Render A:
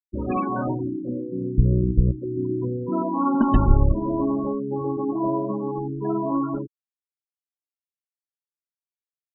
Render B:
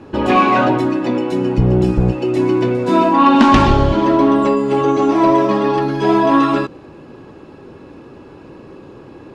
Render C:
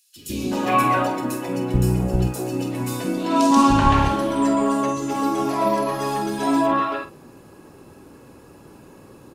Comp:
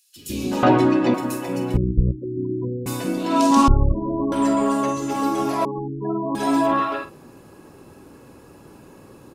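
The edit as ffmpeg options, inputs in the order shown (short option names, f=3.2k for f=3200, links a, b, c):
-filter_complex "[0:a]asplit=3[a][b][c];[2:a]asplit=5[d][e][f][g][h];[d]atrim=end=0.632[i];[1:a]atrim=start=0.628:end=1.142[j];[e]atrim=start=1.138:end=1.772[k];[a]atrim=start=1.768:end=2.862[l];[f]atrim=start=2.858:end=3.682[m];[b]atrim=start=3.678:end=4.322[n];[g]atrim=start=4.318:end=5.652[o];[c]atrim=start=5.648:end=6.352[p];[h]atrim=start=6.348[q];[i][j]acrossfade=d=0.004:c1=hsin:c2=hsin[r];[r][k]acrossfade=d=0.004:c1=hsin:c2=hsin[s];[s][l]acrossfade=d=0.004:c1=hsin:c2=hsin[t];[t][m]acrossfade=d=0.004:c1=hsin:c2=hsin[u];[u][n]acrossfade=d=0.004:c1=hsin:c2=hsin[v];[v][o]acrossfade=d=0.004:c1=hsin:c2=hsin[w];[w][p]acrossfade=d=0.004:c1=hsin:c2=hsin[x];[x][q]acrossfade=d=0.004:c1=hsin:c2=hsin"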